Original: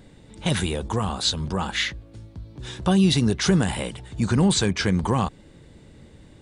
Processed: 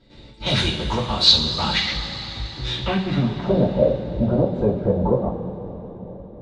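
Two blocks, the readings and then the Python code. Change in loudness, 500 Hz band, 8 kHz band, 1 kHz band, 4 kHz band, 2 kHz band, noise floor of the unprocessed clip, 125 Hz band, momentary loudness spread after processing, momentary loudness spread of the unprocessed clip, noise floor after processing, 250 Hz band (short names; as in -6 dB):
+2.5 dB, +7.0 dB, -8.0 dB, +1.5 dB, +7.5 dB, 0.0 dB, -50 dBFS, 0.0 dB, 16 LU, 17 LU, -43 dBFS, -1.0 dB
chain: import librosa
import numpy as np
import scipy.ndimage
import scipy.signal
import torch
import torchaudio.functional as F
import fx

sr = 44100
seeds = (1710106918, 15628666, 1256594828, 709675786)

p1 = fx.rider(x, sr, range_db=10, speed_s=0.5)
p2 = x + (p1 * 10.0 ** (1.5 / 20.0))
p3 = 10.0 ** (-11.5 / 20.0) * np.tanh(p2 / 10.0 ** (-11.5 / 20.0))
p4 = fx.step_gate(p3, sr, bpm=152, pattern='.xx.xxx.xx.xxxx', floor_db=-12.0, edge_ms=4.5)
p5 = fx.filter_sweep_lowpass(p4, sr, from_hz=4300.0, to_hz=580.0, start_s=2.68, end_s=3.52, q=3.6)
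p6 = fx.rev_double_slope(p5, sr, seeds[0], early_s=0.28, late_s=4.4, knee_db=-18, drr_db=-8.0)
y = p6 * 10.0 ** (-10.0 / 20.0)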